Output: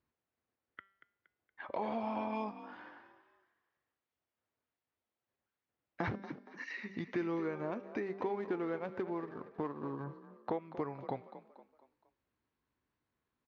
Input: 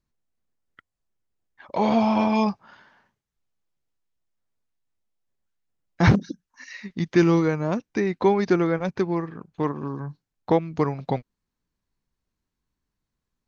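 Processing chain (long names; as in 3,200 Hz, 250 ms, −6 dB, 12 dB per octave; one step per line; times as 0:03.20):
0:08.02–0:10.04: running median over 15 samples
parametric band 170 Hz −9 dB 0.79 octaves
hum removal 195.4 Hz, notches 30
downward compressor 3 to 1, threshold −42 dBFS, peak gain reduction 20 dB
band-pass filter 110–2,700 Hz
echo with shifted repeats 234 ms, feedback 42%, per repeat +41 Hz, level −13.5 dB
level +2 dB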